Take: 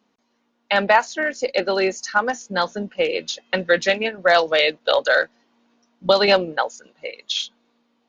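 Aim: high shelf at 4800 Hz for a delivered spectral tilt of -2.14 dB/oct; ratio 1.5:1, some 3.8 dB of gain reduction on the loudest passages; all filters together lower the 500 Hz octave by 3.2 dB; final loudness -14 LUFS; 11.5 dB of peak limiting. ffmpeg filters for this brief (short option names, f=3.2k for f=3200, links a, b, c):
-af "equalizer=f=500:t=o:g=-4,highshelf=f=4.8k:g=8,acompressor=threshold=-22dB:ratio=1.5,volume=15dB,alimiter=limit=-2dB:level=0:latency=1"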